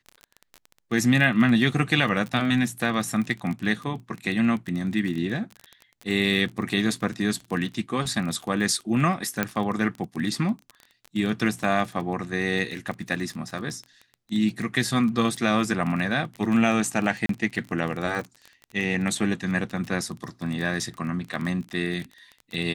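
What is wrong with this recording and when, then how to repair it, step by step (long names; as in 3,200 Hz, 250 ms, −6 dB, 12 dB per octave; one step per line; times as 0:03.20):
surface crackle 25 per second −29 dBFS
0:09.43: click −9 dBFS
0:17.26–0:17.29: drop-out 33 ms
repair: click removal
repair the gap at 0:17.26, 33 ms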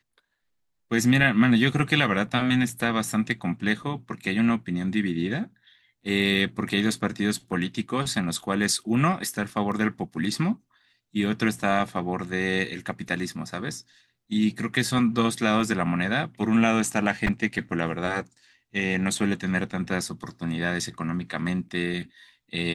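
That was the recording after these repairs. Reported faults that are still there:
none of them is left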